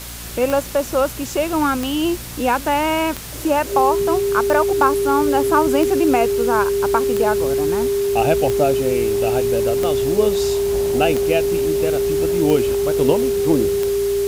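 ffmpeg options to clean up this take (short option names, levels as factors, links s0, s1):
-af "adeclick=t=4,bandreject=f=58:t=h:w=4,bandreject=f=116:t=h:w=4,bandreject=f=174:t=h:w=4,bandreject=f=232:t=h:w=4,bandreject=f=290:t=h:w=4,bandreject=f=400:w=30,afwtdn=0.022"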